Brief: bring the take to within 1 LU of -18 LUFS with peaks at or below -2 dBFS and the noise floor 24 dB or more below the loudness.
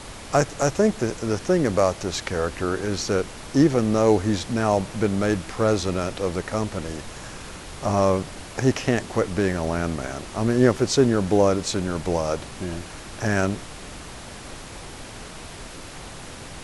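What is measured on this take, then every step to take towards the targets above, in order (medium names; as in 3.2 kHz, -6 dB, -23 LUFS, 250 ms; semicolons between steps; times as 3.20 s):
noise floor -39 dBFS; noise floor target -48 dBFS; loudness -23.5 LUFS; peak level -4.0 dBFS; loudness target -18.0 LUFS
-> noise print and reduce 9 dB; trim +5.5 dB; peak limiter -2 dBFS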